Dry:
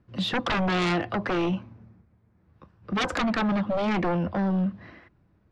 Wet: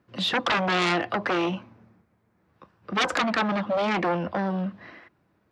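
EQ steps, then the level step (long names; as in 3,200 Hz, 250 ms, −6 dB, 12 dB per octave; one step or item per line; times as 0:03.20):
high-pass filter 420 Hz 6 dB per octave
+4.0 dB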